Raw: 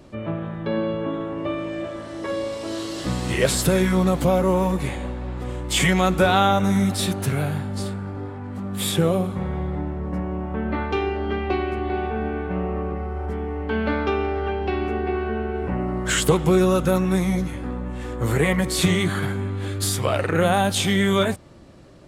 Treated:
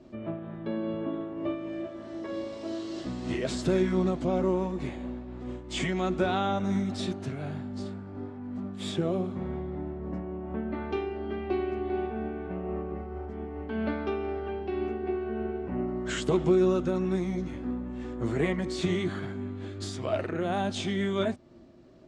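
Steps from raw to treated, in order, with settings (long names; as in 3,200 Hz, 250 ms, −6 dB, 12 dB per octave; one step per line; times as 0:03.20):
low-pass filter 6,900 Hz 24 dB per octave
hollow resonant body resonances 250/350/640 Hz, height 12 dB, ringing for 75 ms
amplitude modulation by smooth noise, depth 60%
level −9 dB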